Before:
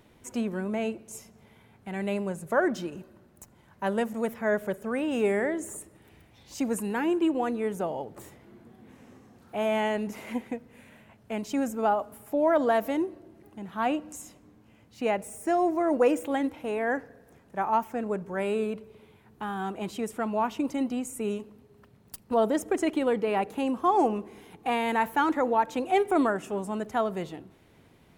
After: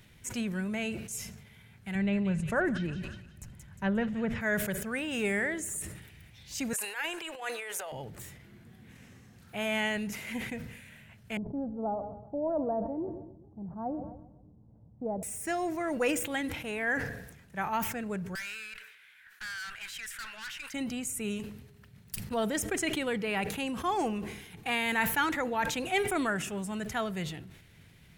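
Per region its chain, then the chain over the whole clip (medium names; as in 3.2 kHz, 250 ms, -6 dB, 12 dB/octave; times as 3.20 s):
1.95–4.41 s: low-pass that closes with the level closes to 2 kHz, closed at -23 dBFS + tilt EQ -2 dB/octave + feedback echo behind a high-pass 178 ms, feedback 45%, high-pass 3 kHz, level -4.5 dB
6.73–7.92 s: high-pass 540 Hz 24 dB/octave + transient shaper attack -9 dB, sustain +9 dB
11.37–15.23 s: steep low-pass 880 Hz + feedback delay 131 ms, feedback 48%, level -16 dB
18.35–20.74 s: resonant high-pass 1.6 kHz, resonance Q 4.8 + valve stage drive 39 dB, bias 0.5
whole clip: high-order bell 530 Hz -12 dB 2.7 oct; decay stretcher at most 59 dB/s; trim +4 dB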